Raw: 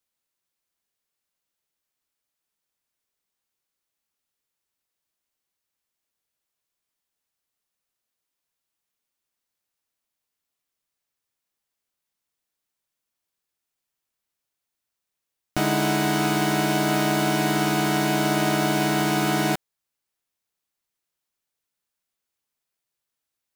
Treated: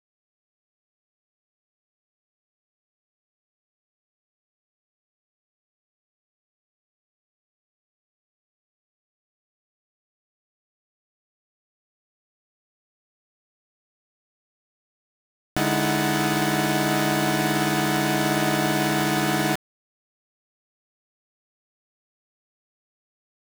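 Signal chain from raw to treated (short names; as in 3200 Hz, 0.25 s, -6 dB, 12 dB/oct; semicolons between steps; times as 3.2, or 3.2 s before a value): sample gate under -25.5 dBFS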